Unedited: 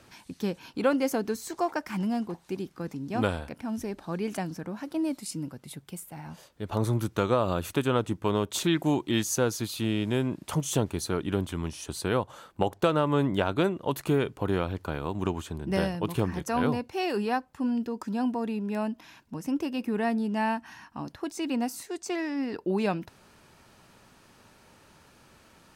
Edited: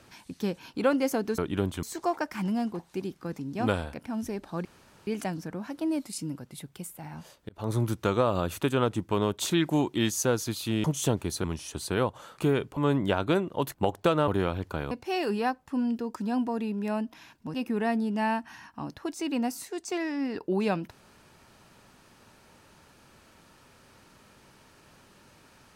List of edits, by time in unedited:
4.20 s: insert room tone 0.42 s
6.62–6.91 s: fade in
9.97–10.53 s: delete
11.13–11.58 s: move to 1.38 s
12.52–13.06 s: swap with 14.03–14.42 s
15.05–16.78 s: delete
19.41–19.72 s: delete

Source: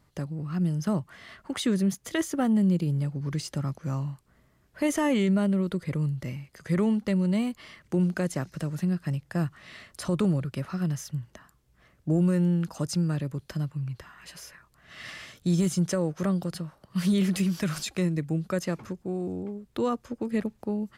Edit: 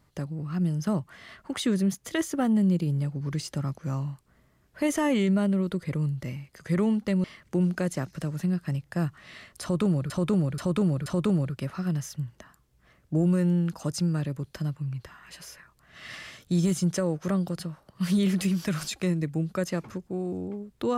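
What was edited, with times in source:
7.24–7.63 s: delete
10.01–10.49 s: loop, 4 plays

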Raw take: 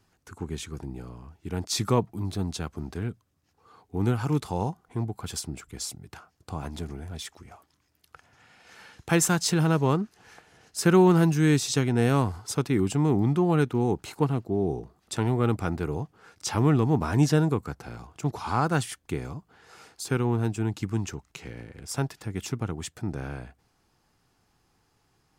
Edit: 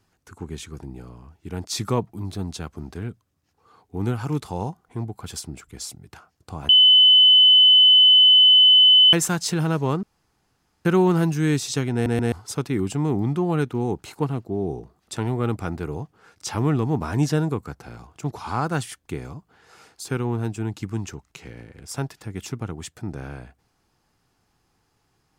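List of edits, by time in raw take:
6.69–9.13 s: bleep 3.02 kHz -9.5 dBFS
10.03–10.85 s: room tone
11.93 s: stutter in place 0.13 s, 3 plays

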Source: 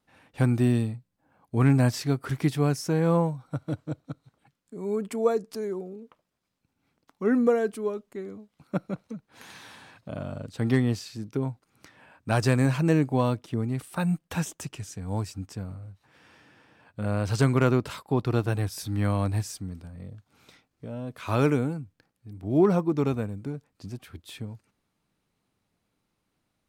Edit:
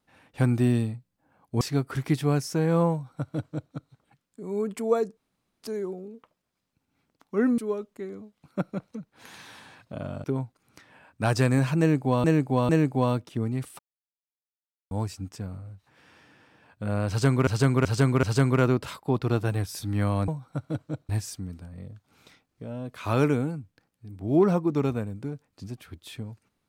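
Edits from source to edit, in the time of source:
1.61–1.95 s: delete
3.26–4.07 s: copy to 19.31 s
5.51 s: insert room tone 0.46 s
7.46–7.74 s: delete
10.40–11.31 s: delete
12.86–13.31 s: loop, 3 plays
13.96–15.08 s: mute
17.26–17.64 s: loop, 4 plays

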